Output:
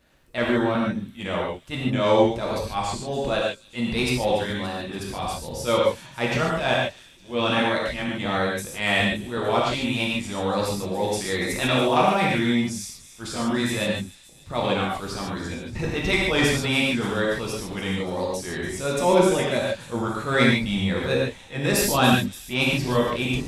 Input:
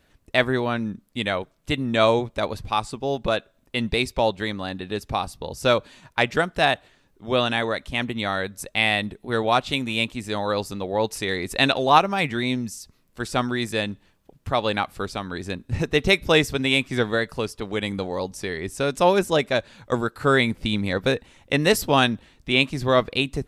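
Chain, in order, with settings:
pitch shifter gated in a rhythm −1 semitone, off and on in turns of 375 ms
transient designer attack −11 dB, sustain +3 dB
soft clipping −9 dBFS, distortion −23 dB
on a send: delay with a high-pass on its return 287 ms, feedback 65%, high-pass 5,400 Hz, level −12 dB
on the sum: reverb whose tail is shaped and stops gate 170 ms flat, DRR −4 dB
level −2 dB

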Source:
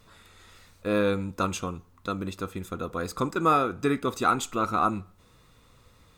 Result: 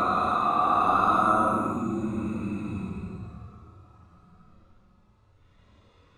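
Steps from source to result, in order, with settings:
low-pass that shuts in the quiet parts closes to 2,600 Hz, open at −21 dBFS
extreme stretch with random phases 13×, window 0.05 s, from 0:04.76

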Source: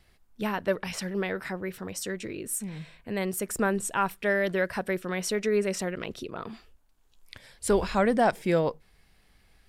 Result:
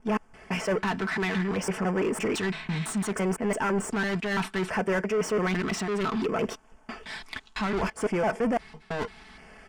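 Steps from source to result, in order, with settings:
slices reordered back to front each 168 ms, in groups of 3
in parallel at −11 dB: decimation without filtering 17×
on the sum: comb filter 4.6 ms, depth 50%
reversed playback
downward compressor 6 to 1, threshold −29 dBFS, peak gain reduction 14.5 dB
reversed playback
low-pass filter 9,300 Hz 24 dB per octave
low-shelf EQ 390 Hz +4.5 dB
mid-hump overdrive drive 25 dB, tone 2,400 Hz, clips at −18 dBFS
auto-filter notch square 0.64 Hz 530–3,900 Hz

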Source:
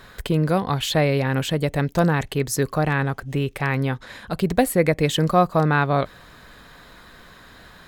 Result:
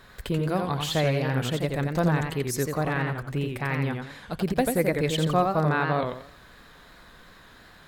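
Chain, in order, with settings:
feedback echo with a swinging delay time 87 ms, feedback 33%, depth 158 cents, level −4.5 dB
level −6 dB

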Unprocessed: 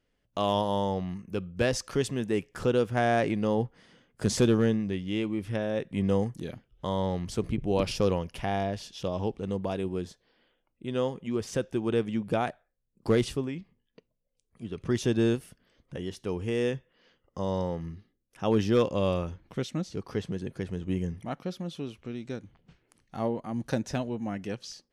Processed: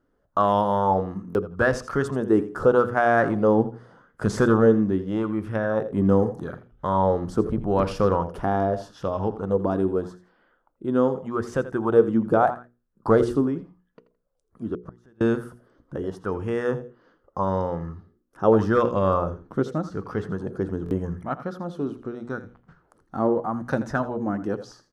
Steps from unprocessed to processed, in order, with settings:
high shelf with overshoot 1,800 Hz −9.5 dB, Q 3
on a send: repeating echo 83 ms, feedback 20%, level −14 dB
0:14.74–0:15.21: on the sum: gate with flip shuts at −25 dBFS, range −33 dB
mains-hum notches 60/120/180/240/300/360/420/480 Hz
buffer that repeats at 0:01.28/0:20.84, samples 1,024, times 2
auto-filter bell 0.82 Hz 280–2,500 Hz +9 dB
level +4 dB

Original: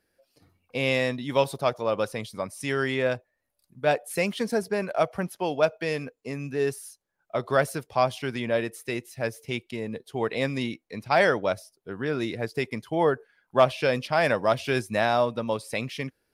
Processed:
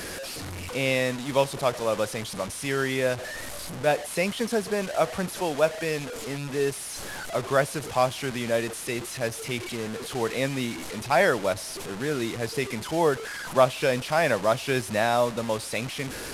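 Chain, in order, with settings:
linear delta modulator 64 kbit/s, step −29.5 dBFS

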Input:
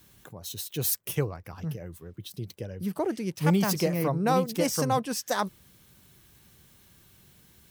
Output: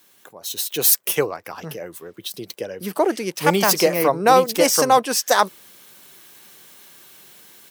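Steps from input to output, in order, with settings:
high-pass filter 400 Hz 12 dB per octave
automatic gain control gain up to 9 dB
level +3.5 dB

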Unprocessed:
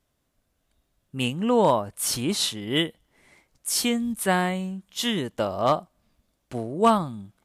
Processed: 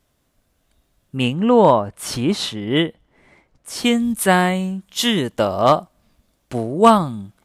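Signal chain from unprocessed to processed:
0:01.16–0:03.84: low-pass filter 2,800 Hz → 1,400 Hz 6 dB per octave
level +7.5 dB

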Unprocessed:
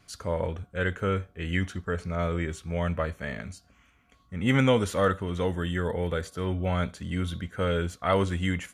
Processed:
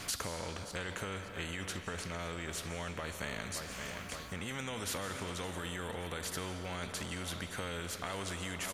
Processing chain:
on a send: repeating echo 570 ms, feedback 35%, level −22.5 dB
on the sum: brickwall limiter −22 dBFS, peak gain reduction 11 dB
downward compressor 5 to 1, threshold −46 dBFS, peak gain reduction 17.5 dB
comb and all-pass reverb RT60 3.8 s, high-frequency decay 0.65×, pre-delay 110 ms, DRR 14 dB
every bin compressed towards the loudest bin 2 to 1
level +11.5 dB

